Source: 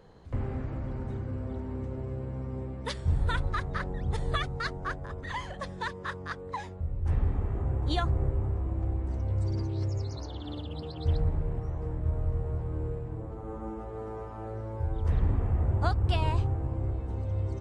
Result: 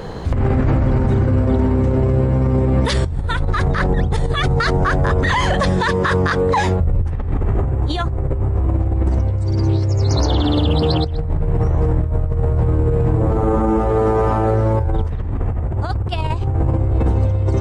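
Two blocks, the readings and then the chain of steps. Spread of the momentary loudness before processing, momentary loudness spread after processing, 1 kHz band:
10 LU, 5 LU, +15.5 dB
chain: compressor whose output falls as the input rises −36 dBFS, ratio −1
boost into a limiter +28.5 dB
level −7 dB

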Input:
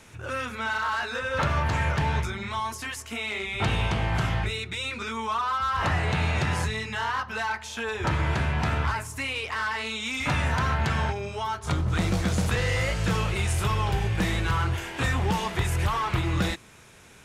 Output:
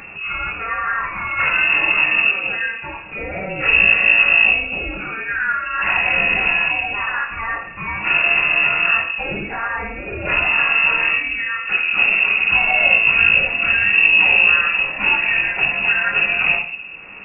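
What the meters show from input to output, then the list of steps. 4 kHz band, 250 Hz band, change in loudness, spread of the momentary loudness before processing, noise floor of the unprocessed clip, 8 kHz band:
+10.0 dB, −3.0 dB, +12.5 dB, 6 LU, −45 dBFS, below −40 dB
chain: rectangular room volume 75 cubic metres, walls mixed, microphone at 2.2 metres
upward compression, threshold −25 dBFS
voice inversion scrambler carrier 2,700 Hz
level −3.5 dB

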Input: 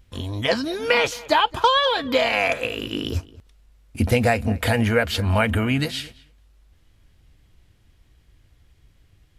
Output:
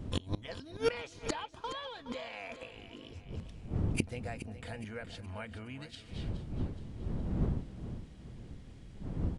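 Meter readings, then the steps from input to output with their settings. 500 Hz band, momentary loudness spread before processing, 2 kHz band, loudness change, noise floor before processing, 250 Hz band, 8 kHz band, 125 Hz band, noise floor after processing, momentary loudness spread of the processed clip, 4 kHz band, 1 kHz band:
−17.0 dB, 10 LU, −21.5 dB, −18.5 dB, −59 dBFS, −13.5 dB, −13.0 dB, −11.5 dB, −52 dBFS, 15 LU, −20.5 dB, −22.0 dB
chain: wind on the microphone 160 Hz −38 dBFS
gate with flip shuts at −19 dBFS, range −25 dB
repeating echo 419 ms, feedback 48%, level −13 dB
downsampling to 22,050 Hz
level +1.5 dB

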